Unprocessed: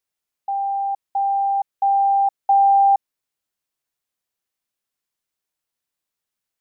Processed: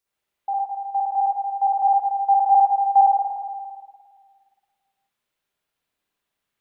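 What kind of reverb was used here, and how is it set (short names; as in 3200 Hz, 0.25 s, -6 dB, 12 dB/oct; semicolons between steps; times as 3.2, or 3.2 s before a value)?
spring tank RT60 1.8 s, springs 52/57 ms, chirp 25 ms, DRR -8 dB; gain -1 dB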